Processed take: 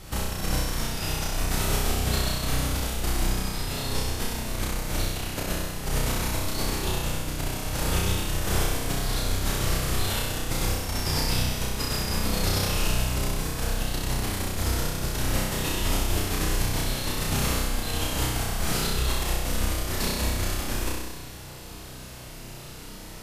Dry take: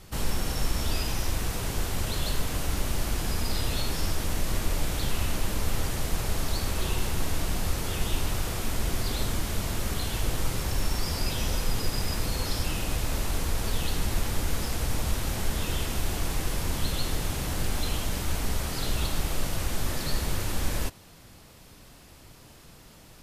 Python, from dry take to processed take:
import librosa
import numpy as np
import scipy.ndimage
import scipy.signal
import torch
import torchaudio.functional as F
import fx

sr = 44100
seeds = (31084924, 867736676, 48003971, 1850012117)

y = fx.over_compress(x, sr, threshold_db=-31.0, ratio=-1.0)
y = fx.room_flutter(y, sr, wall_m=5.5, rt60_s=1.3)